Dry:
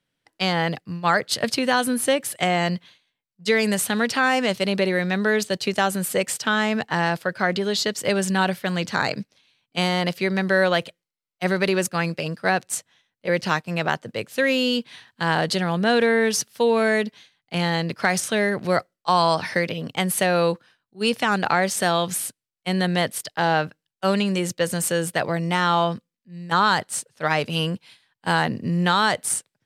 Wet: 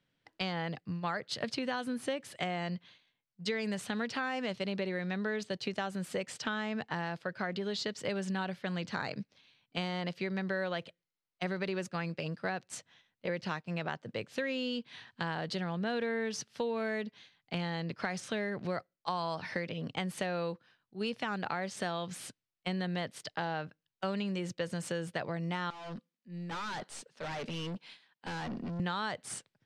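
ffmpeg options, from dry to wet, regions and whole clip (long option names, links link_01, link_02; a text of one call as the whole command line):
ffmpeg -i in.wav -filter_complex "[0:a]asettb=1/sr,asplit=3[link_01][link_02][link_03];[link_01]atrim=end=25.704[link_04];[link_02]atrim=start=25.7:end=28.8,asetpts=PTS-STARTPTS,afade=type=in:duration=0.004:curve=qsin,afade=type=out:start_time=3.096:duration=0.004:curve=qsin,highpass=frequency=180:width=0.5412,highpass=frequency=180:width=1.3066,aeval=exprs='(tanh(50.1*val(0)+0.2)-tanh(0.2))/50.1':channel_layout=same[link_05];[link_03]atrim=start=28.796[link_06];[link_04][link_05]acrossfade=duration=0.004:curve1=hsin:curve2=qsin[link_07];[link_07][link_06]acrossfade=duration=0.004:curve1=qsin:curve2=hsin,lowpass=5200,equalizer=frequency=130:width_type=o:width=2.1:gain=2.5,acompressor=threshold=-35dB:ratio=3,volume=-1.5dB" out.wav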